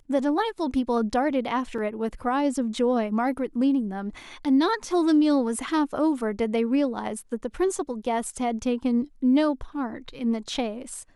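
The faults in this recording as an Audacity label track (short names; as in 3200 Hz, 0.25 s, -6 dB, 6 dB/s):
1.780000	1.780000	gap 4.2 ms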